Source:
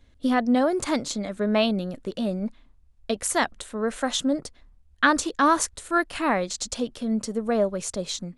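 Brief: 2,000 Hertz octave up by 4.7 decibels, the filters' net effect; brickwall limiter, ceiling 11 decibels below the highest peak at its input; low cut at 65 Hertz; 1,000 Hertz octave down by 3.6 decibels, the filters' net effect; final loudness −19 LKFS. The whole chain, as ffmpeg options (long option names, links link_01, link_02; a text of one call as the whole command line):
ffmpeg -i in.wav -af "highpass=65,equalizer=frequency=1000:width_type=o:gain=-8,equalizer=frequency=2000:width_type=o:gain=9,volume=7.5dB,alimiter=limit=-6.5dB:level=0:latency=1" out.wav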